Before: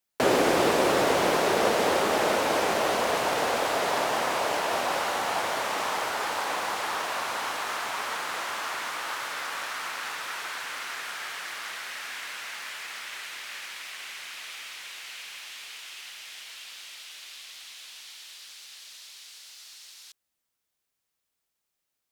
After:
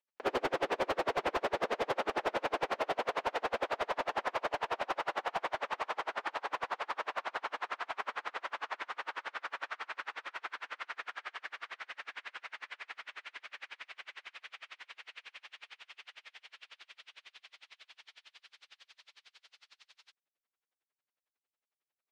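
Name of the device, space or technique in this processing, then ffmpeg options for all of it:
helicopter radio: -af "highpass=340,lowpass=2.7k,aeval=exprs='val(0)*pow(10,-36*(0.5-0.5*cos(2*PI*11*n/s))/20)':c=same,asoftclip=type=hard:threshold=-26dB"

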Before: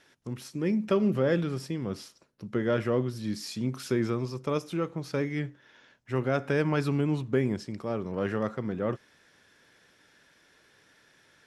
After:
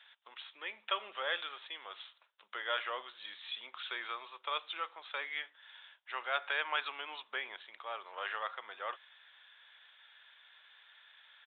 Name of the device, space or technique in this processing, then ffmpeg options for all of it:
musical greeting card: -af "aresample=8000,aresample=44100,highpass=f=830:w=0.5412,highpass=f=830:w=1.3066,equalizer=f=3.5k:t=o:w=0.53:g=9.5"

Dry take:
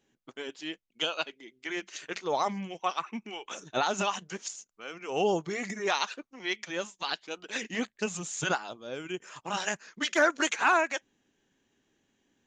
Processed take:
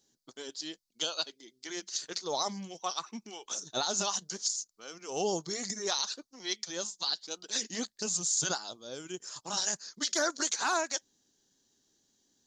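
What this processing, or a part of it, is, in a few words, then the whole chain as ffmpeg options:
over-bright horn tweeter: -af "highshelf=f=3.4k:t=q:w=3:g=10.5,alimiter=limit=-14.5dB:level=0:latency=1:release=31,volume=-4.5dB"

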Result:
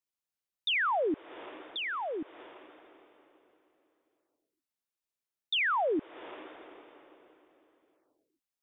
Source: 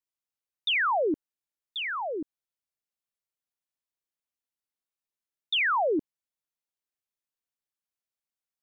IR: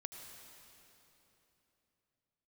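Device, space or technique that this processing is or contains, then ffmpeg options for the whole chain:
ducked reverb: -filter_complex "[0:a]asplit=3[a][b][c];[1:a]atrim=start_sample=2205[d];[b][d]afir=irnorm=-1:irlink=0[e];[c]apad=whole_len=380514[f];[e][f]sidechaincompress=threshold=-42dB:ratio=6:attack=16:release=253,volume=-2.5dB[g];[a][g]amix=inputs=2:normalize=0,volume=-4dB"

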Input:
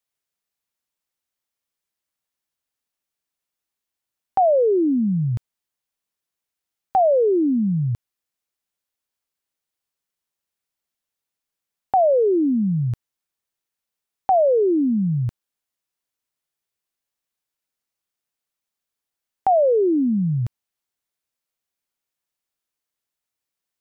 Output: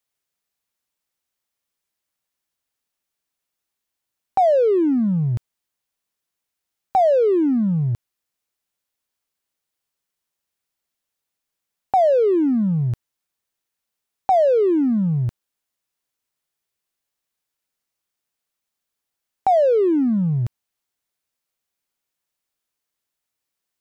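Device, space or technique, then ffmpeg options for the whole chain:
parallel distortion: -filter_complex "[0:a]asplit=2[a][b];[b]asoftclip=type=hard:threshold=-28.5dB,volume=-8.5dB[c];[a][c]amix=inputs=2:normalize=0"

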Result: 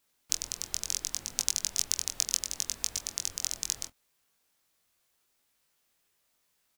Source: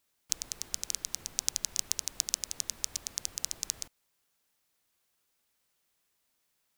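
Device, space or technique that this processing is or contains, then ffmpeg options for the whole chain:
double-tracked vocal: -filter_complex "[0:a]asplit=2[a][b];[b]adelay=24,volume=-13dB[c];[a][c]amix=inputs=2:normalize=0,flanger=delay=19.5:depth=3:speed=0.71,volume=5.5dB"

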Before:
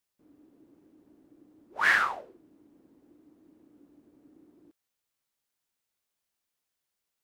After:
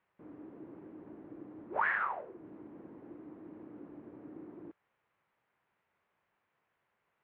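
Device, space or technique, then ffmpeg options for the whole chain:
bass amplifier: -af "acompressor=threshold=-47dB:ratio=4,highpass=62,equalizer=f=71:t=q:w=4:g=-9,equalizer=f=270:t=q:w=4:g=-7,equalizer=f=1k:t=q:w=4:g=3,lowpass=f=2.2k:w=0.5412,lowpass=f=2.2k:w=1.3066,volume=13dB"

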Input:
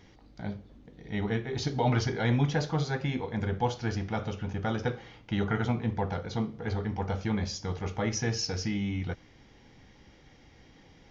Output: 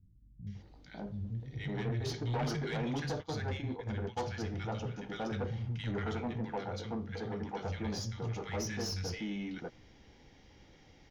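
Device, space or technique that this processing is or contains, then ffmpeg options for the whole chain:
saturation between pre-emphasis and de-emphasis: -filter_complex "[0:a]acrossover=split=180|1500[a][b][c];[c]adelay=470[d];[b]adelay=550[e];[a][e][d]amix=inputs=3:normalize=0,asplit=3[f][g][h];[f]afade=t=out:st=3.19:d=0.02[i];[g]agate=range=-22dB:threshold=-33dB:ratio=16:detection=peak,afade=t=in:st=3.19:d=0.02,afade=t=out:st=4.19:d=0.02[j];[h]afade=t=in:st=4.19:d=0.02[k];[i][j][k]amix=inputs=3:normalize=0,bandreject=f=1.1k:w=24,asettb=1/sr,asplit=3[l][m][n];[l]atrim=end=6.564[o];[m]atrim=start=6.56:end=7.62,asetpts=PTS-STARTPTS,afade=t=in:d=0.004:c=qsin,afade=t=out:st=1.056:d=0.004:c=qsin,highpass=140[p];[n]atrim=start=7.616[q];[o][p]acrossfade=d=0.004:c1=hsin:c2=qsin[r];[r][q]acrossfade=d=0.004:c1=qsin:c2=hsin,highshelf=f=4.8k:g=9.5,asoftclip=type=tanh:threshold=-27.5dB,highshelf=f=4.8k:g=-9.5,volume=-2dB"

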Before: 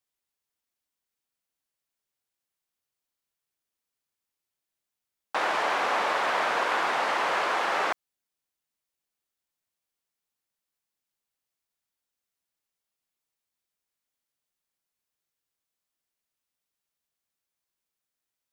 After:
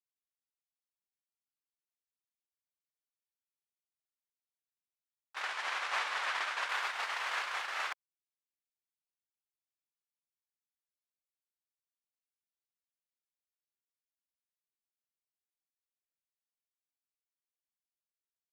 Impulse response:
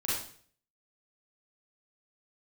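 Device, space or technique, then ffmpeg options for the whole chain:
octave pedal: -filter_complex "[0:a]asettb=1/sr,asplit=3[a][b][c];[a]atrim=end=5.414[d];[b]atrim=start=5.41:end=6.69,asetpts=PTS-STARTPTS,afade=t=in:d=0.004:c=qsin,afade=t=out:st=1.276:d=0.004:c=qsin,lowpass=11k[e];[c]atrim=start=6.686[f];[d][e]acrossfade=d=0.004:c1=hsin:c2=qsin[g];[g][f]acrossfade=d=0.004:c1=qsin:c2=hsin,asplit=2[h][i];[i]asetrate=22050,aresample=44100,atempo=2,volume=-6dB[j];[h][j]amix=inputs=2:normalize=0,agate=range=-18dB:threshold=-24dB:ratio=16:detection=peak,highpass=1.5k"

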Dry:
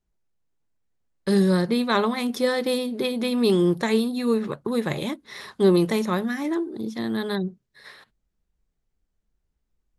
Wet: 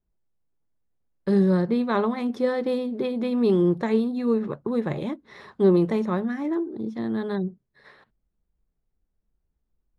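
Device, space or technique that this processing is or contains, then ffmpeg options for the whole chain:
through cloth: -af "lowpass=9.2k,highshelf=f=2.4k:g=-17"

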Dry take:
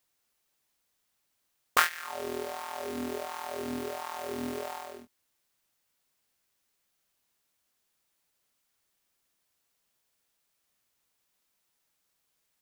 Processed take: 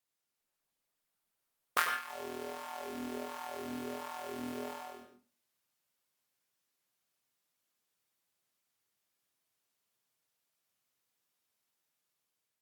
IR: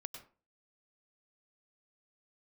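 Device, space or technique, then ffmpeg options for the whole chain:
far-field microphone of a smart speaker: -filter_complex "[1:a]atrim=start_sample=2205[a];[0:a][a]afir=irnorm=-1:irlink=0,highpass=f=85:w=0.5412,highpass=f=85:w=1.3066,dynaudnorm=f=380:g=5:m=4dB,volume=-6dB" -ar 48000 -c:a libopus -b:a 48k

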